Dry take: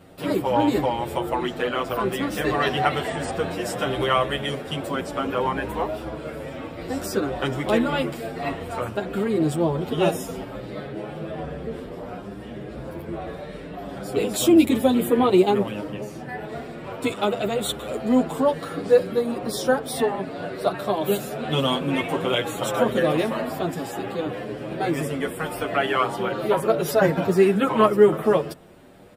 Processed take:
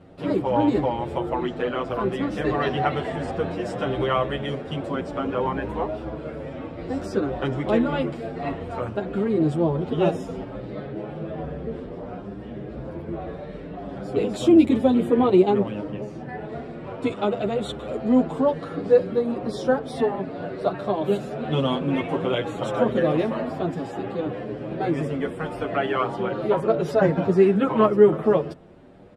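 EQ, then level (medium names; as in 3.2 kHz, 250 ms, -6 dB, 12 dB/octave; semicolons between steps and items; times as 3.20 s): distance through air 83 m; tilt shelf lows +3.5 dB; -2.0 dB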